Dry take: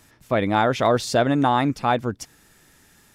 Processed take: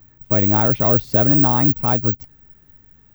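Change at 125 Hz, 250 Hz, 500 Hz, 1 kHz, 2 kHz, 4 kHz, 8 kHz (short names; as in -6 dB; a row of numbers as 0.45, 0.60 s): +7.5 dB, +2.5 dB, -1.5 dB, -3.5 dB, -6.0 dB, under -10 dB, under -15 dB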